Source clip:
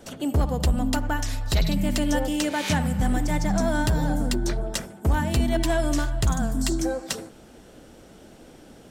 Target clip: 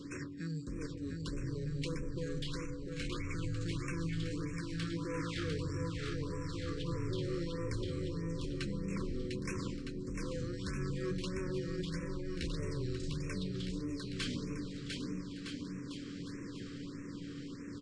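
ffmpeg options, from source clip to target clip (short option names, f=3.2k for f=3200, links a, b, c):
-filter_complex "[0:a]equalizer=f=64:w=0.76:g=-13.5,areverse,acompressor=threshold=-38dB:ratio=5,areverse,asetrate=49501,aresample=44100,atempo=0.890899,aeval=exprs='0.0562*(cos(1*acos(clip(val(0)/0.0562,-1,1)))-cos(1*PI/2))+0.0112*(cos(5*acos(clip(val(0)/0.0562,-1,1)))-cos(5*PI/2))':c=same,tremolo=f=1.1:d=0.38,asplit=2[a][b];[b]aecho=0:1:350|630|854|1033|1177:0.631|0.398|0.251|0.158|0.1[c];[a][c]amix=inputs=2:normalize=0,aeval=exprs='val(0)+0.00794*sin(2*PI*570*n/s)':c=same,asuperstop=centerf=1500:order=12:qfactor=1.8,asetrate=22050,aresample=44100,afftfilt=real='re*(1-between(b*sr/1024,750*pow(3900/750,0.5+0.5*sin(2*PI*1.6*pts/sr))/1.41,750*pow(3900/750,0.5+0.5*sin(2*PI*1.6*pts/sr))*1.41))':imag='im*(1-between(b*sr/1024,750*pow(3900/750,0.5+0.5*sin(2*PI*1.6*pts/sr))/1.41,750*pow(3900/750,0.5+0.5*sin(2*PI*1.6*pts/sr))*1.41))':win_size=1024:overlap=0.75,volume=-3dB"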